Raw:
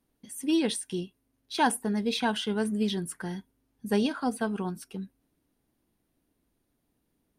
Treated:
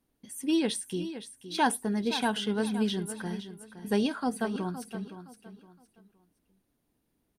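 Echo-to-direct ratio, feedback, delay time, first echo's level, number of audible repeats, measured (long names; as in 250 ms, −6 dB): −11.5 dB, 29%, 516 ms, −12.0 dB, 3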